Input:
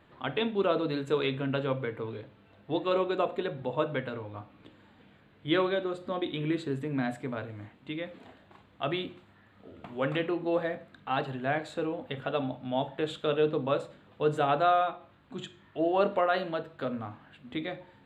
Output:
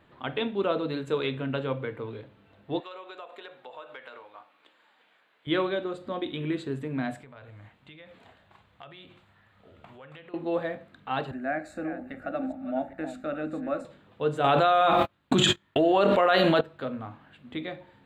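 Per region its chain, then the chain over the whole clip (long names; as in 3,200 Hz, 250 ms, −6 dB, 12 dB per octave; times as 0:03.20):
0:02.80–0:05.47: high-pass filter 760 Hz + downward compressor 4 to 1, threshold −40 dBFS
0:07.21–0:10.34: downward compressor 12 to 1, threshold −40 dBFS + parametric band 290 Hz −10 dB 1.3 octaves
0:11.31–0:13.85: delay that plays each chunk backwards 405 ms, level −10.5 dB + low-shelf EQ 140 Hz +11.5 dB + phaser with its sweep stopped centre 660 Hz, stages 8
0:14.44–0:16.61: noise gate −51 dBFS, range −50 dB + high-shelf EQ 2,900 Hz +8 dB + envelope flattener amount 100%
whole clip: no processing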